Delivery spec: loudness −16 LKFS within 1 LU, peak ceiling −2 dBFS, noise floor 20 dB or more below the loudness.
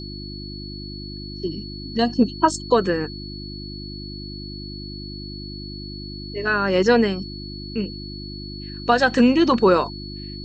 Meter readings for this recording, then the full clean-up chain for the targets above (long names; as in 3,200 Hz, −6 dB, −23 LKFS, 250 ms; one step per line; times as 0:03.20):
mains hum 50 Hz; hum harmonics up to 350 Hz; level of the hum −32 dBFS; interfering tone 4,400 Hz; level of the tone −37 dBFS; integrated loudness −20.5 LKFS; sample peak −3.0 dBFS; target loudness −16.0 LKFS
→ hum removal 50 Hz, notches 7
notch filter 4,400 Hz, Q 30
level +4.5 dB
brickwall limiter −2 dBFS